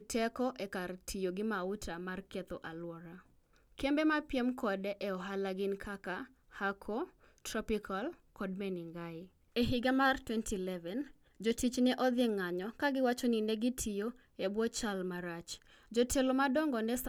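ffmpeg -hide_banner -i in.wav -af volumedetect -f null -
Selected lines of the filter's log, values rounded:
mean_volume: -36.0 dB
max_volume: -18.9 dB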